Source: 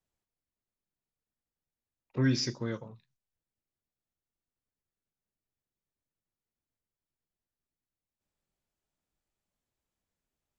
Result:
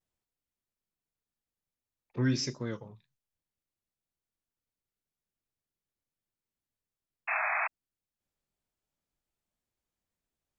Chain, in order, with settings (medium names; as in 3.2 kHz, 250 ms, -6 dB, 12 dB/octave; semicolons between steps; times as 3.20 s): painted sound noise, 7.28–7.67 s, 630–2700 Hz -29 dBFS; vibrato 1.3 Hz 92 cents; trim -1.5 dB